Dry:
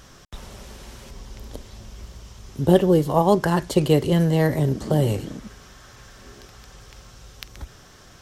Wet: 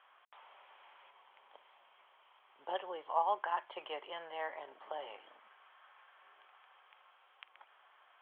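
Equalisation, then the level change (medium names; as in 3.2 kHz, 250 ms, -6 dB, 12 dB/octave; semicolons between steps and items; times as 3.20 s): ladder high-pass 710 Hz, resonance 35%; rippled Chebyshev low-pass 3.3 kHz, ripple 3 dB; -4.5 dB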